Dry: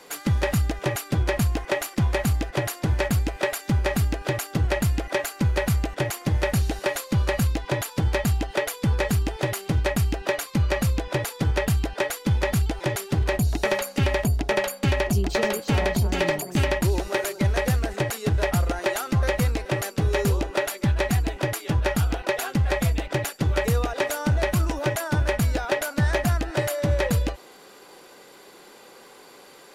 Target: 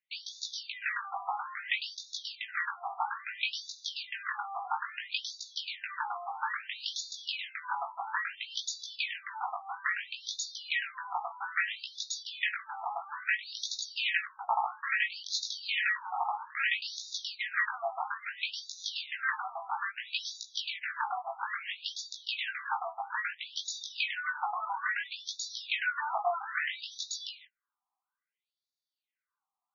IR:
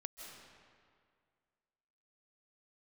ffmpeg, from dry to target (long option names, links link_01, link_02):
-af "flanger=delay=17.5:depth=3.1:speed=0.35,agate=range=-40dB:threshold=-42dB:ratio=16:detection=peak,afftfilt=real='re*between(b*sr/1024,920*pow(5000/920,0.5+0.5*sin(2*PI*0.6*pts/sr))/1.41,920*pow(5000/920,0.5+0.5*sin(2*PI*0.6*pts/sr))*1.41)':imag='im*between(b*sr/1024,920*pow(5000/920,0.5+0.5*sin(2*PI*0.6*pts/sr))/1.41,920*pow(5000/920,0.5+0.5*sin(2*PI*0.6*pts/sr))*1.41)':win_size=1024:overlap=0.75,volume=6dB"